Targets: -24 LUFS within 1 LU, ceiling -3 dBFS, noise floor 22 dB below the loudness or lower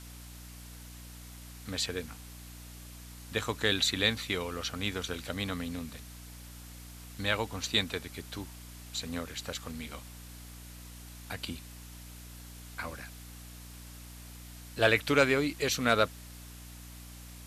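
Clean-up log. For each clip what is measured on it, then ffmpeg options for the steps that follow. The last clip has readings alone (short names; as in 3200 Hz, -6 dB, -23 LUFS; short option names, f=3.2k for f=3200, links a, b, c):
hum 60 Hz; harmonics up to 300 Hz; hum level -46 dBFS; noise floor -48 dBFS; noise floor target -54 dBFS; loudness -31.5 LUFS; peak -9.5 dBFS; loudness target -24.0 LUFS
-> -af "bandreject=f=60:t=h:w=4,bandreject=f=120:t=h:w=4,bandreject=f=180:t=h:w=4,bandreject=f=240:t=h:w=4,bandreject=f=300:t=h:w=4"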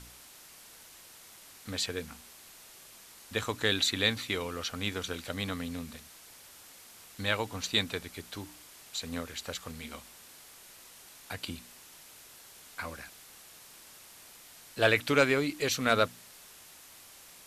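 hum none; noise floor -53 dBFS; noise floor target -54 dBFS
-> -af "afftdn=nr=6:nf=-53"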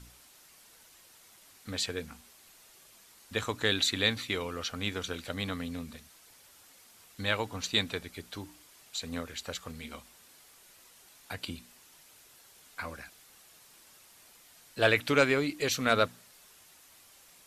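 noise floor -58 dBFS; loudness -31.5 LUFS; peak -9.5 dBFS; loudness target -24.0 LUFS
-> -af "volume=7.5dB,alimiter=limit=-3dB:level=0:latency=1"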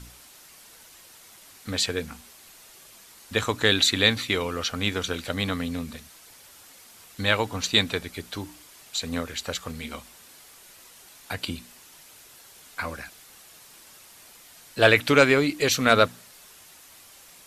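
loudness -24.0 LUFS; peak -3.0 dBFS; noise floor -51 dBFS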